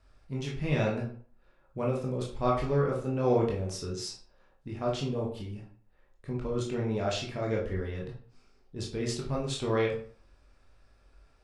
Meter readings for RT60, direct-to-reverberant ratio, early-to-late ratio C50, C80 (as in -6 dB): 0.50 s, -3.0 dB, 6.0 dB, 11.5 dB